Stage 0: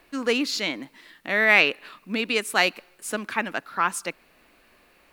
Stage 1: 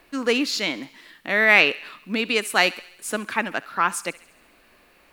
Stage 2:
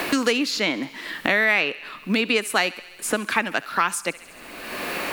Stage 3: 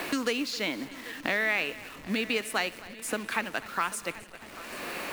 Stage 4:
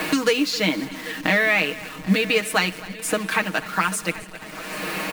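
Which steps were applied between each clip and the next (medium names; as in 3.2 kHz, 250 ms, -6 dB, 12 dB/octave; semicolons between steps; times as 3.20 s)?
thinning echo 68 ms, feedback 62%, high-pass 1 kHz, level -18 dB; trim +2 dB
three bands compressed up and down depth 100%
send-on-delta sampling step -34 dBFS; multi-head delay 263 ms, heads first and third, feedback 59%, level -19 dB; trim -8 dB
peaking EQ 190 Hz +11 dB 0.23 oct; comb 6.4 ms, depth 74%; trim +6.5 dB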